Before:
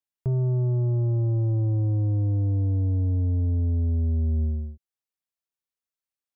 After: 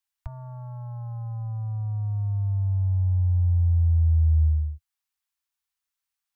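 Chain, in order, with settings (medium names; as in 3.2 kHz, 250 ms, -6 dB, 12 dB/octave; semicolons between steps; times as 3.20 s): inverse Chebyshev band-stop 160–440 Hz, stop band 50 dB; trim +6 dB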